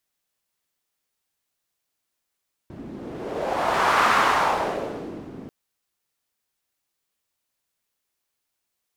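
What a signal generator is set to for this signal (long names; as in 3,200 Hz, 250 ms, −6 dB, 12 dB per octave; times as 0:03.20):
wind from filtered noise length 2.79 s, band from 250 Hz, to 1,200 Hz, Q 2, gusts 1, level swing 20 dB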